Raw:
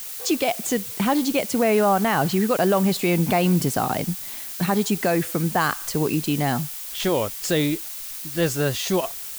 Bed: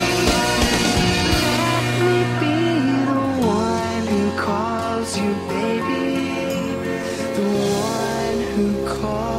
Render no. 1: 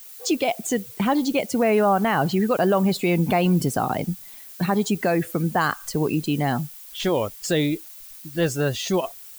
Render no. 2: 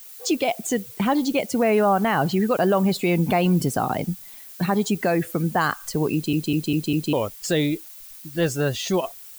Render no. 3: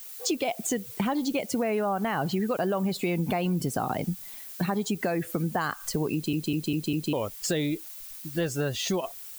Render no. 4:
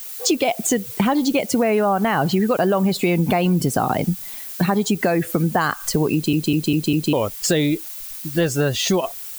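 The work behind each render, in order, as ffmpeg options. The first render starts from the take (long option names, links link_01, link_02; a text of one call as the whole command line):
ffmpeg -i in.wav -af "afftdn=noise_reduction=11:noise_floor=-34" out.wav
ffmpeg -i in.wav -filter_complex "[0:a]asplit=6[link_01][link_02][link_03][link_04][link_05][link_06];[link_01]atrim=end=6.332[link_07];[link_02]atrim=start=6.128:end=6.332[link_08];[link_03]atrim=start=6.128:end=6.332[link_09];[link_04]atrim=start=6.128:end=6.332[link_10];[link_05]atrim=start=6.128:end=6.332[link_11];[link_06]atrim=start=7.128[link_12];[link_07][link_08]acrossfade=duration=0.004:curve1=hsin:curve2=hsin[link_13];[link_13][link_09]acrossfade=duration=0.004:curve1=hsin:curve2=hsin[link_14];[link_14][link_10]acrossfade=duration=0.004:curve1=hsin:curve2=hsin[link_15];[link_15][link_11]acrossfade=duration=0.004:curve1=hsin:curve2=hsin[link_16];[link_16][link_12]acrossfade=duration=0.004:curve1=hsin:curve2=hsin" out.wav
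ffmpeg -i in.wav -af "acompressor=threshold=-25dB:ratio=4" out.wav
ffmpeg -i in.wav -af "volume=9dB" out.wav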